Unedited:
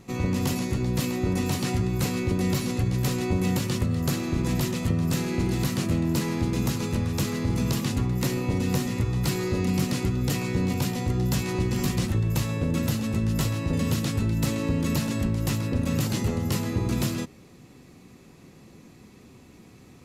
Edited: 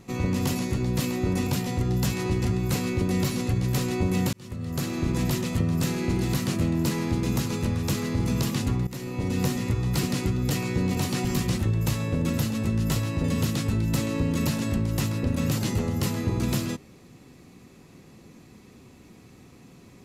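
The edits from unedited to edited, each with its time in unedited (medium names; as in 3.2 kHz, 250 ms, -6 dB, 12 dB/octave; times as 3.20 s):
1.47–1.75 s: swap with 10.76–11.74 s
3.63–4.29 s: fade in
8.17–8.69 s: fade in, from -15 dB
9.33–9.82 s: delete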